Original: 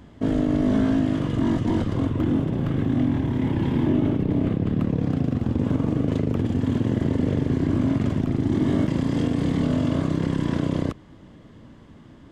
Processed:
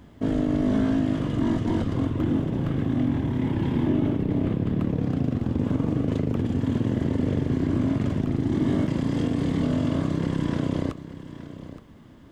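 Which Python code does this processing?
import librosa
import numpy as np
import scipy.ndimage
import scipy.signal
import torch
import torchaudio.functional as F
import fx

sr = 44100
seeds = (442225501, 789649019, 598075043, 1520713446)

p1 = fx.quant_dither(x, sr, seeds[0], bits=12, dither='none')
p2 = p1 + fx.echo_single(p1, sr, ms=871, db=-14.0, dry=0)
y = p2 * 10.0 ** (-2.0 / 20.0)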